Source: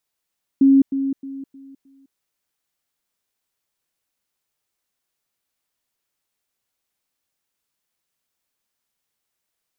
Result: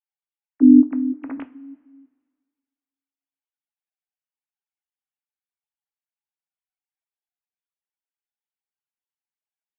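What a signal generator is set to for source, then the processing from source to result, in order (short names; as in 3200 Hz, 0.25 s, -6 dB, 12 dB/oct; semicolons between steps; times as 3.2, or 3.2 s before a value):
level ladder 272 Hz -9 dBFS, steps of -10 dB, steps 5, 0.21 s 0.10 s
sine-wave speech; two-slope reverb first 0.27 s, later 1.7 s, from -18 dB, DRR 8 dB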